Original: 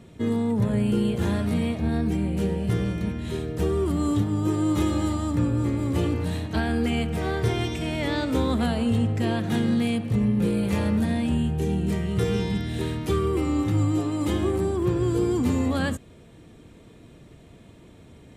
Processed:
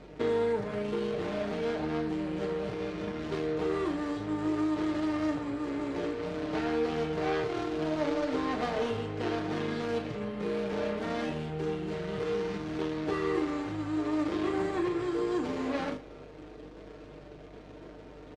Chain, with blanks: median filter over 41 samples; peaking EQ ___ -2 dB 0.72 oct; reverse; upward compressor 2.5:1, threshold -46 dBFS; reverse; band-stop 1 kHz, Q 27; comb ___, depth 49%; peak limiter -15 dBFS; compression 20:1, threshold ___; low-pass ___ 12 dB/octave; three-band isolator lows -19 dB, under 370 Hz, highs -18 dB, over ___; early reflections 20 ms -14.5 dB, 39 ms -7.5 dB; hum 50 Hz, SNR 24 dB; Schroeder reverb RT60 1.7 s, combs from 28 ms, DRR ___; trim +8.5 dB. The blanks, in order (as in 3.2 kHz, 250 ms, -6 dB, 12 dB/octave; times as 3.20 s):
7.7 kHz, 6.6 ms, -29 dBFS, 11 kHz, 7 kHz, 17.5 dB